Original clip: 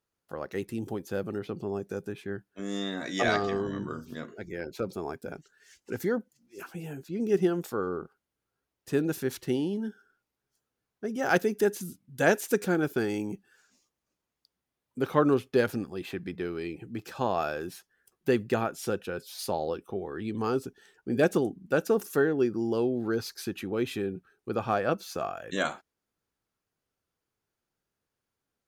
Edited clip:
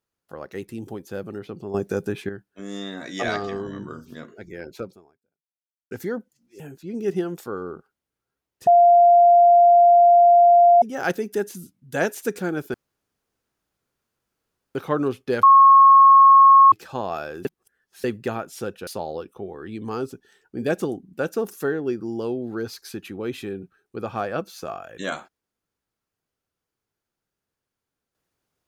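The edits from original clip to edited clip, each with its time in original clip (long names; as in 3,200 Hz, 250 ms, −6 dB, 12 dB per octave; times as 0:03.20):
0:01.74–0:02.29: clip gain +9.5 dB
0:04.82–0:05.91: fade out exponential
0:06.60–0:06.86: remove
0:08.93–0:11.08: beep over 696 Hz −9.5 dBFS
0:13.00–0:15.01: fill with room tone
0:15.69–0:16.98: beep over 1,090 Hz −7.5 dBFS
0:17.71–0:18.30: reverse
0:19.13–0:19.40: remove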